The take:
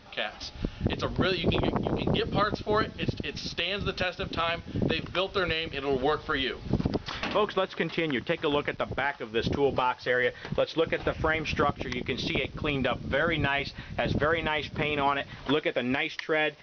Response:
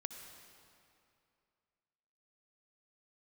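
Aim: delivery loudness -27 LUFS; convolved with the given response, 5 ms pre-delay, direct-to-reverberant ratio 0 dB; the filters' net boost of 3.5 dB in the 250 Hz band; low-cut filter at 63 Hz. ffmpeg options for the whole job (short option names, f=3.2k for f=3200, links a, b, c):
-filter_complex "[0:a]highpass=63,equalizer=f=250:t=o:g=4.5,asplit=2[a][b];[1:a]atrim=start_sample=2205,adelay=5[c];[b][c]afir=irnorm=-1:irlink=0,volume=2dB[d];[a][d]amix=inputs=2:normalize=0,volume=-2dB"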